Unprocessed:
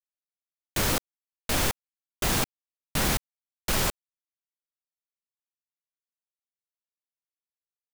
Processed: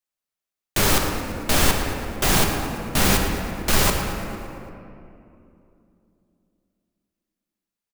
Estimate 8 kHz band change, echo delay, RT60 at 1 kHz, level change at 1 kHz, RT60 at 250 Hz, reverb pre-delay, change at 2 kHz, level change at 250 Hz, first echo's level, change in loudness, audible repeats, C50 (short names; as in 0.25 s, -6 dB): +6.5 dB, 0.113 s, 2.5 s, +8.5 dB, 3.7 s, 3 ms, +7.5 dB, +9.0 dB, -11.0 dB, +6.0 dB, 2, 2.5 dB